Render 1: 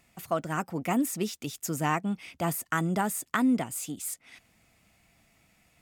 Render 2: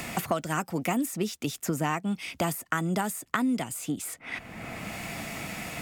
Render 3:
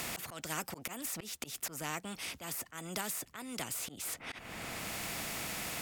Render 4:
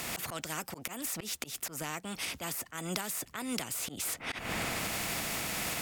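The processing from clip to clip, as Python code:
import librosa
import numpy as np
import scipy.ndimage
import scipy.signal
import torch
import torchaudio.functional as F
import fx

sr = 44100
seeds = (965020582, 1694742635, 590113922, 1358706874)

y1 = fx.band_squash(x, sr, depth_pct=100)
y2 = fx.auto_swell(y1, sr, attack_ms=212.0)
y2 = fx.spectral_comp(y2, sr, ratio=2.0)
y2 = y2 * 10.0 ** (-3.5 / 20.0)
y3 = fx.recorder_agc(y2, sr, target_db=-25.0, rise_db_per_s=24.0, max_gain_db=30)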